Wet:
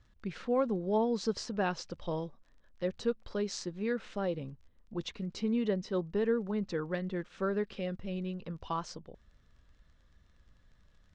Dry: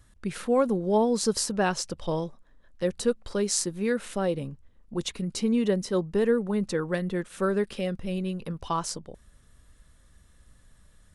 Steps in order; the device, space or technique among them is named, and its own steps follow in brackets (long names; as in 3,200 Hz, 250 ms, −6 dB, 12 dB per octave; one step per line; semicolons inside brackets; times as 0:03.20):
lo-fi chain (low-pass filter 5,000 Hz 12 dB per octave; tape wow and flutter 29 cents; surface crackle 24 per second −47 dBFS)
low-pass filter 6,800 Hz 24 dB per octave
level −6.5 dB